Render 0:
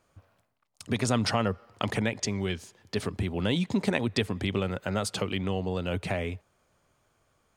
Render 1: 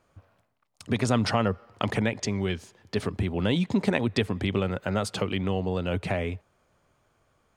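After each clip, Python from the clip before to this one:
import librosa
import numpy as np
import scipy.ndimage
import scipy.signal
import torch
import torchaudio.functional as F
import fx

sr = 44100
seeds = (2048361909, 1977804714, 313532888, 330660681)

y = fx.high_shelf(x, sr, hz=4100.0, db=-6.5)
y = y * 10.0 ** (2.5 / 20.0)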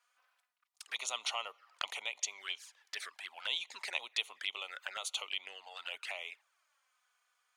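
y = scipy.signal.sosfilt(scipy.signal.bessel(4, 1500.0, 'highpass', norm='mag', fs=sr, output='sos'), x)
y = fx.env_flanger(y, sr, rest_ms=4.2, full_db=-35.5)
y = y * 10.0 ** (1.0 / 20.0)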